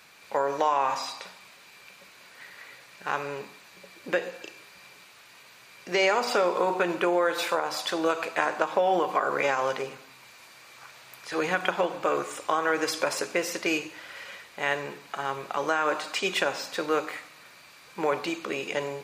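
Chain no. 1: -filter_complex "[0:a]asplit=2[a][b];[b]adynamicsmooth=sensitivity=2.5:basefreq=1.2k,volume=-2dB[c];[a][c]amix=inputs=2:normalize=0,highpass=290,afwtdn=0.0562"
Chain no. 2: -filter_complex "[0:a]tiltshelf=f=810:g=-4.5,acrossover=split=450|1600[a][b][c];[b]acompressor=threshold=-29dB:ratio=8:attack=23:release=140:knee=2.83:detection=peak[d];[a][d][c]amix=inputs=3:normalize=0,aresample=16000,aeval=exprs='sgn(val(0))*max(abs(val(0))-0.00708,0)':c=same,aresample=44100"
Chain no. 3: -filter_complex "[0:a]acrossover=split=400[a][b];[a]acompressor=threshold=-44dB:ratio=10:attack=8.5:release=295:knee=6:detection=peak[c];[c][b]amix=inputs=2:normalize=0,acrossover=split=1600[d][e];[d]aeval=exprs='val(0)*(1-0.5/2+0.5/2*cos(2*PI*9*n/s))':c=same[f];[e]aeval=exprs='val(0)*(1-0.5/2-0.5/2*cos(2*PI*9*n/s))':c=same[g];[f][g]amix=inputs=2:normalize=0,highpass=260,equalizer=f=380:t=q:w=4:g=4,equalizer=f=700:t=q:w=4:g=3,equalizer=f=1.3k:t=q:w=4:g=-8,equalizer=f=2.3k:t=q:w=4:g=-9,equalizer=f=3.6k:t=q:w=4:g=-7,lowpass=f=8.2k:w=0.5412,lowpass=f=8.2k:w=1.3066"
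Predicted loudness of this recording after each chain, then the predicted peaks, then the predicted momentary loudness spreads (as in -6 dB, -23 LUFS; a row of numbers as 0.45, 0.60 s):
-24.0, -28.5, -32.0 LUFS; -3.5, -8.0, -13.5 dBFS; 11, 13, 19 LU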